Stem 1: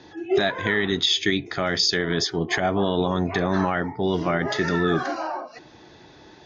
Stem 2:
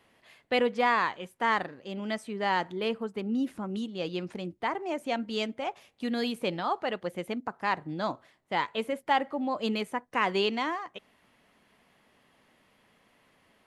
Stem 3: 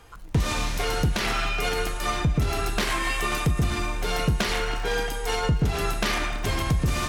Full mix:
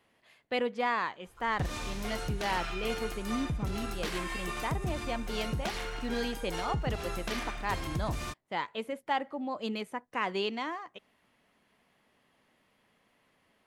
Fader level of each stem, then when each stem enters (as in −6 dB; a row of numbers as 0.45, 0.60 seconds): muted, −5.0 dB, −11.0 dB; muted, 0.00 s, 1.25 s